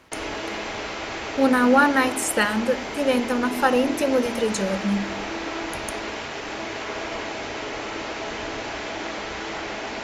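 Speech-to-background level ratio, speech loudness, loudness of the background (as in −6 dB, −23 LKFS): 8.5 dB, −22.0 LKFS, −30.5 LKFS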